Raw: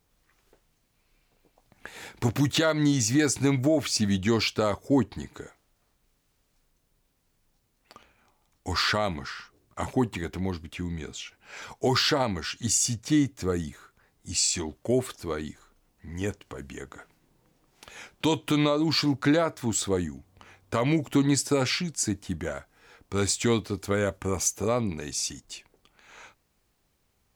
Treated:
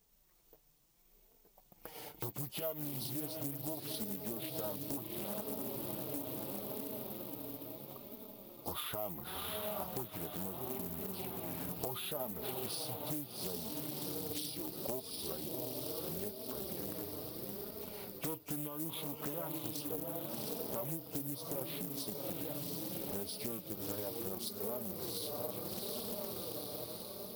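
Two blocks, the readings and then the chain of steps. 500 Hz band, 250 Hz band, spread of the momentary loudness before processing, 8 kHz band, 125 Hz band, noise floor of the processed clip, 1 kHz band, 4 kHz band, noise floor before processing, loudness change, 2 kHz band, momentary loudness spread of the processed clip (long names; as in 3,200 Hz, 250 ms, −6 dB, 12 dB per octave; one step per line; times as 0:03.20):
−12.5 dB, −16.0 dB, 18 LU, −15.0 dB, −16.0 dB, −67 dBFS, −13.5 dB, −14.0 dB, −71 dBFS, −13.5 dB, −20.0 dB, 4 LU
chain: hearing-aid frequency compression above 2,000 Hz 1.5 to 1
on a send: feedback delay with all-pass diffusion 723 ms, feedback 53%, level −5 dB
on the sum: flanger 0.73 Hz, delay 4.4 ms, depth 2.5 ms, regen +16%
parametric band 1,700 Hz −14 dB 0.77 octaves
downward compressor 12 to 1, threshold −39 dBFS, peak gain reduction 21.5 dB
bad sample-rate conversion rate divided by 3×, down none, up zero stuff
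parametric band 720 Hz +5 dB 1.6 octaves
log-companded quantiser 6 bits
highs frequency-modulated by the lows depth 0.53 ms
level −2 dB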